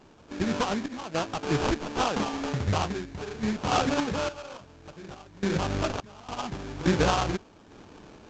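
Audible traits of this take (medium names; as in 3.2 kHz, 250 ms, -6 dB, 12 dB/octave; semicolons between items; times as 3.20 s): random-step tremolo, depth 95%; aliases and images of a low sample rate 2 kHz, jitter 20%; A-law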